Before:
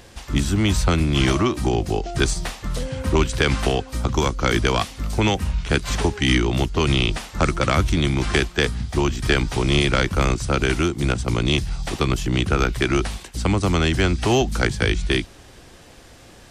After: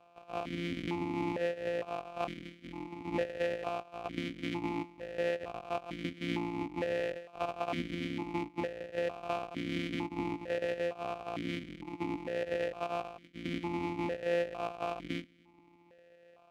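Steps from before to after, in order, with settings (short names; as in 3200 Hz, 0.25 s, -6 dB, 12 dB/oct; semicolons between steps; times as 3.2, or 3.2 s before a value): sample sorter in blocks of 256 samples; vowel sequencer 2.2 Hz; gain -2.5 dB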